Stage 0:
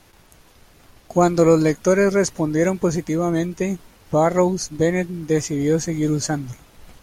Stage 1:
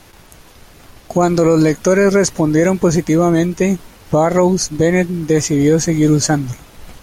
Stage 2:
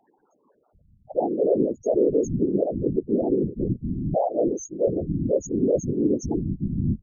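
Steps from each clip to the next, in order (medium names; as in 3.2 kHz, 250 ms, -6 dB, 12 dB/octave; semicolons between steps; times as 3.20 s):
peak limiter -13 dBFS, peak gain reduction 8.5 dB; trim +8.5 dB
bands offset in time highs, lows 740 ms, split 210 Hz; loudest bins only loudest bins 2; whisper effect; trim -4.5 dB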